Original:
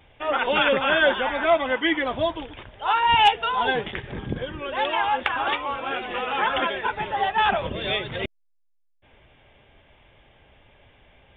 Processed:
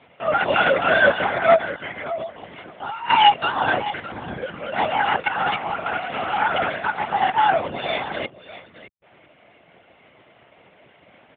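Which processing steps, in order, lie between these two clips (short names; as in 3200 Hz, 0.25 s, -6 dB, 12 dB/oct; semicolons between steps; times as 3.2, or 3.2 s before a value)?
comb 1.4 ms, depth 58%; 1.57–3.1 compressor 16:1, threshold -29 dBFS, peak gain reduction 15 dB; echo 0.613 s -15 dB; LPC vocoder at 8 kHz whisper; BPF 160–2700 Hz; gain +1.5 dB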